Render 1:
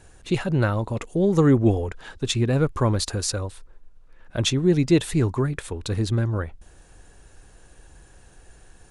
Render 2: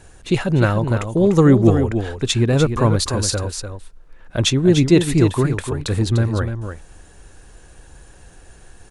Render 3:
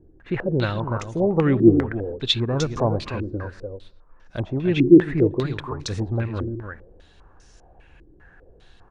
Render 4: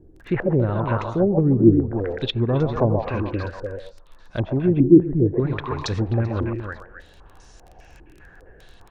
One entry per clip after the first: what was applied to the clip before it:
single-tap delay 297 ms −8 dB; level +5 dB
on a send at −21 dB: convolution reverb RT60 0.80 s, pre-delay 107 ms; on the sum: low-pass on a step sequencer 5 Hz 330–5,700 Hz; level −8 dB
echo through a band-pass that steps 129 ms, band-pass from 790 Hz, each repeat 1.4 octaves, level −2.5 dB; surface crackle 18 per second −39 dBFS; treble cut that deepens with the level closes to 310 Hz, closed at −15 dBFS; level +3 dB

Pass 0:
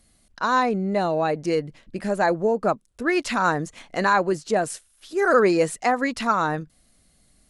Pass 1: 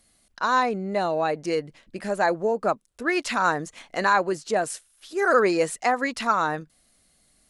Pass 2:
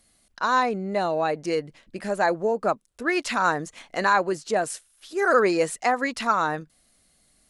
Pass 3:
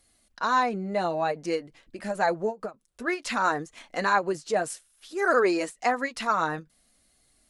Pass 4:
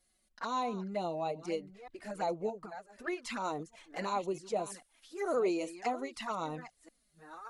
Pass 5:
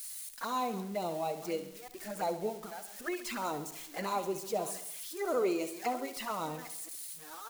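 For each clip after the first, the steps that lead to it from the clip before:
low-shelf EQ 280 Hz −8.5 dB
no processing that can be heard
flanger 0.55 Hz, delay 2.3 ms, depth 4.3 ms, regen −46%; every ending faded ahead of time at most 300 dB per second; level +1.5 dB
delay that plays each chunk backwards 626 ms, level −13.5 dB; flanger swept by the level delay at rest 5.6 ms, full sweep at −24 dBFS; level −6.5 dB
spike at every zero crossing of −38 dBFS; on a send: repeating echo 67 ms, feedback 56%, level −12 dB

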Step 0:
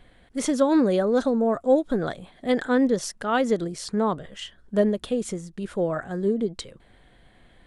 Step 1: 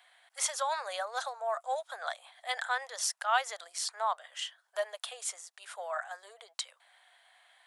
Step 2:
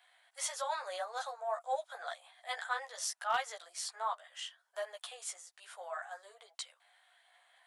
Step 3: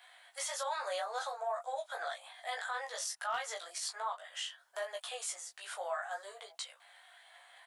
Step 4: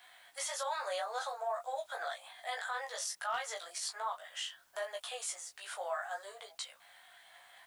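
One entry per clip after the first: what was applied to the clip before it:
Butterworth high-pass 680 Hz 48 dB per octave; high-shelf EQ 4,700 Hz +6 dB; level −2.5 dB
multi-voice chorus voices 6, 1.1 Hz, delay 14 ms, depth 3 ms; hard clipping −22 dBFS, distortion −24 dB; harmonic and percussive parts rebalanced harmonic +3 dB; level −3 dB
in parallel at 0 dB: downward compressor, threshold −46 dBFS, peak gain reduction 17 dB; on the sum: brickwall limiter −30.5 dBFS, peak gain reduction 10 dB; double-tracking delay 20 ms −5 dB; level +1 dB
bit-depth reduction 12 bits, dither triangular

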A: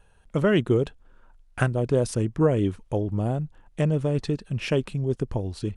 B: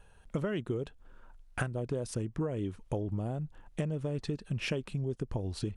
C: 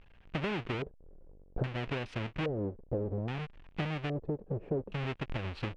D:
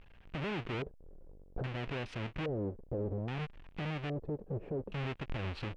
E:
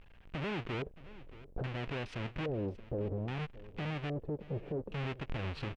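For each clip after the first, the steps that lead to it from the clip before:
downward compressor 10 to 1, threshold −30 dBFS, peak gain reduction 15.5 dB
each half-wave held at its own peak; auto-filter low-pass square 0.61 Hz 490–2,700 Hz; level −6 dB
brickwall limiter −30 dBFS, peak gain reduction 10.5 dB; level +1 dB
repeating echo 624 ms, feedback 18%, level −18 dB

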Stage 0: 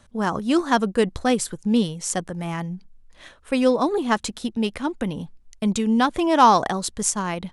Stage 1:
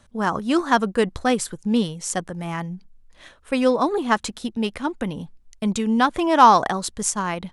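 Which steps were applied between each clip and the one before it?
dynamic equaliser 1,300 Hz, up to +4 dB, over −34 dBFS, Q 0.77
level −1 dB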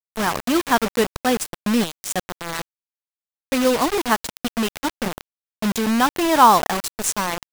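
bit reduction 4 bits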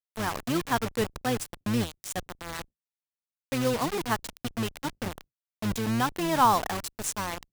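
sub-octave generator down 1 octave, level −3 dB
level −9 dB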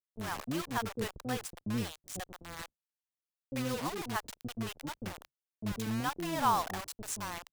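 multiband delay without the direct sound lows, highs 40 ms, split 510 Hz
level −6.5 dB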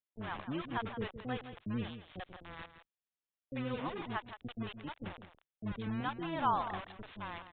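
single-tap delay 166 ms −11.5 dB
gate on every frequency bin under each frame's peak −30 dB strong
downsampling to 8,000 Hz
level −3 dB

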